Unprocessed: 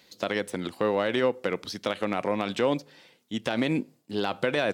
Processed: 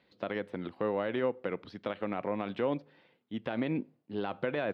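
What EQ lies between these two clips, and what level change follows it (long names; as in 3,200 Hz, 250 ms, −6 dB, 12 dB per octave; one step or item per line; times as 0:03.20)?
high-frequency loss of the air 400 metres
−5.0 dB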